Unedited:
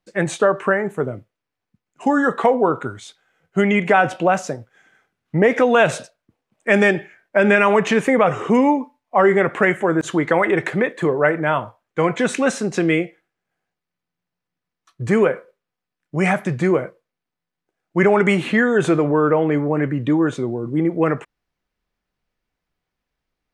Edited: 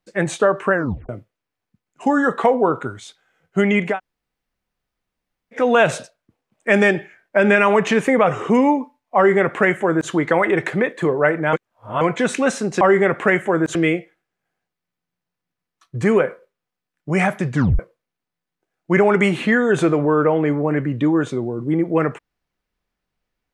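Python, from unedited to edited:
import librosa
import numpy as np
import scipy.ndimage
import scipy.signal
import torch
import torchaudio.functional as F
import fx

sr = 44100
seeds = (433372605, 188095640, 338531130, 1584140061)

y = fx.edit(x, sr, fx.tape_stop(start_s=0.73, length_s=0.36),
    fx.room_tone_fill(start_s=3.92, length_s=1.67, crossfade_s=0.16),
    fx.duplicate(start_s=9.16, length_s=0.94, to_s=12.81),
    fx.reverse_span(start_s=11.53, length_s=0.48),
    fx.tape_stop(start_s=16.6, length_s=0.25), tone=tone)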